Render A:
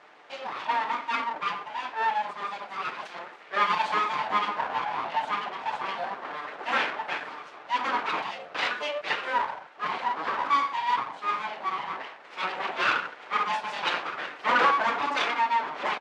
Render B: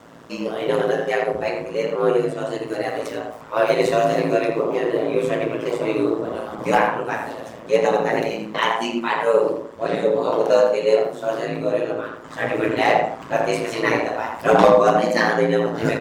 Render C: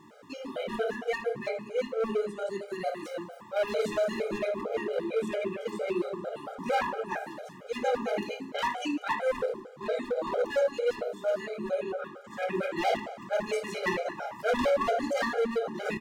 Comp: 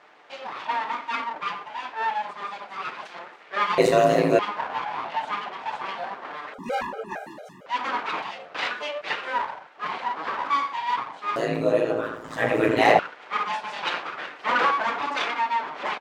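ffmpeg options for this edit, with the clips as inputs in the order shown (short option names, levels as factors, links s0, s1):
-filter_complex "[1:a]asplit=2[s0][s1];[0:a]asplit=4[s2][s3][s4][s5];[s2]atrim=end=3.782[s6];[s0]atrim=start=3.778:end=4.392[s7];[s3]atrim=start=4.388:end=6.542[s8];[2:a]atrim=start=6.538:end=7.662[s9];[s4]atrim=start=7.658:end=11.362[s10];[s1]atrim=start=11.358:end=12.992[s11];[s5]atrim=start=12.988[s12];[s6][s7]acrossfade=d=0.004:c1=hsin:c2=hsin[s13];[s13][s8]acrossfade=d=0.004:c1=hsin:c2=hsin[s14];[s14][s9]acrossfade=d=0.004:c1=hsin:c2=hsin[s15];[s15][s10]acrossfade=d=0.004:c1=hsin:c2=hsin[s16];[s16][s11]acrossfade=d=0.004:c1=hsin:c2=hsin[s17];[s17][s12]acrossfade=d=0.004:c1=hsin:c2=hsin"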